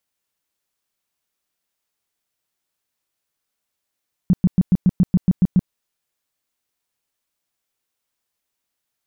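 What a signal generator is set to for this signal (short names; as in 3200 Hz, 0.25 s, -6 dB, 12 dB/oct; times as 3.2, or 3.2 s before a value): tone bursts 182 Hz, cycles 6, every 0.14 s, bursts 10, -9.5 dBFS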